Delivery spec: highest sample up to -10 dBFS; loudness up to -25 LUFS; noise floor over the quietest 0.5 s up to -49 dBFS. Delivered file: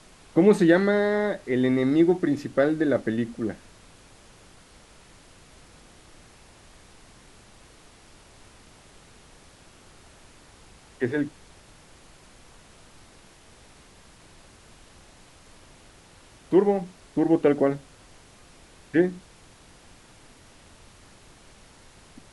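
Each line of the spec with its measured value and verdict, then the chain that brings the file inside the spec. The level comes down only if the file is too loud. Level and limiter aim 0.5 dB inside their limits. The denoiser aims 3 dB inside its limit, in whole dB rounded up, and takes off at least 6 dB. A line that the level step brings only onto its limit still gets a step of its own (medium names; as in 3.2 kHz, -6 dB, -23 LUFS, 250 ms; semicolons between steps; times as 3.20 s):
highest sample -5.5 dBFS: fail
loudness -23.5 LUFS: fail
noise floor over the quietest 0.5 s -52 dBFS: pass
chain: trim -2 dB; peak limiter -10.5 dBFS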